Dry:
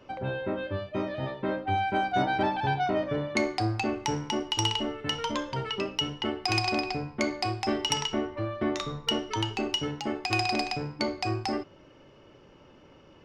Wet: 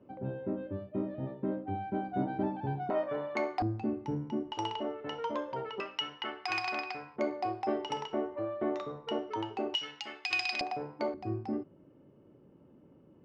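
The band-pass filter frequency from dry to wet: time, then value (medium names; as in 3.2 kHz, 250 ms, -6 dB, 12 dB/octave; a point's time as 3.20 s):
band-pass filter, Q 1.1
230 Hz
from 2.90 s 860 Hz
from 3.62 s 210 Hz
from 4.52 s 610 Hz
from 5.80 s 1.5 kHz
from 7.16 s 570 Hz
from 9.75 s 2.9 kHz
from 10.61 s 640 Hz
from 11.14 s 210 Hz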